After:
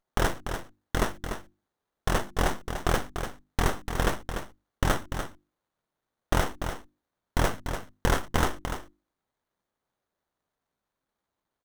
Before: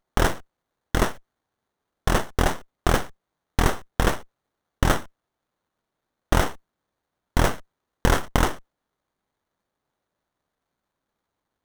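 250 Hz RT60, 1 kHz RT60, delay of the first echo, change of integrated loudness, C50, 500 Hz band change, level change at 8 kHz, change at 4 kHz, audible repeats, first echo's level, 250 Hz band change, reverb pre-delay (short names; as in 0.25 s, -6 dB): none, none, 0.293 s, -5.5 dB, none, -4.0 dB, -4.0 dB, -4.0 dB, 1, -8.0 dB, -5.0 dB, none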